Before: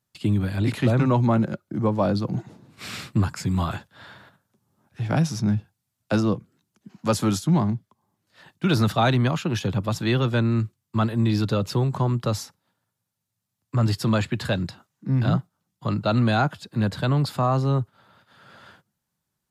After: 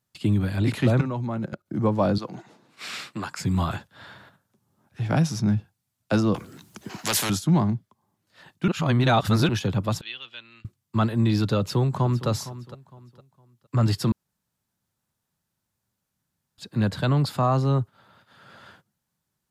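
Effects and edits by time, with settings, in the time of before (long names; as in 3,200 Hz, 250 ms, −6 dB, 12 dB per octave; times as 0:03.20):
0:01.01–0:01.66: output level in coarse steps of 14 dB
0:02.18–0:03.39: meter weighting curve A
0:06.34–0:07.30: every bin compressed towards the loudest bin 4 to 1
0:08.68–0:09.49: reverse
0:10.01–0:10.65: resonant band-pass 3,000 Hz, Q 4.3
0:11.58–0:12.28: delay throw 460 ms, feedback 30%, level −15 dB
0:14.12–0:16.58: fill with room tone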